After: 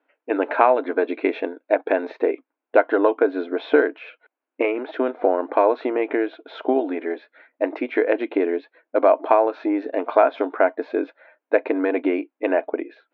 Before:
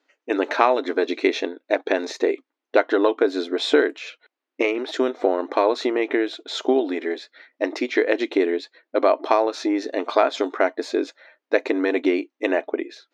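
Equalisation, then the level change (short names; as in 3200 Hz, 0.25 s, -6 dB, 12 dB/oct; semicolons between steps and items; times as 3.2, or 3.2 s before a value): speaker cabinet 330–2100 Hz, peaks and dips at 380 Hz -7 dB, 550 Hz -3 dB, 820 Hz -3 dB, 1200 Hz -7 dB, 1900 Hz -10 dB; +6.0 dB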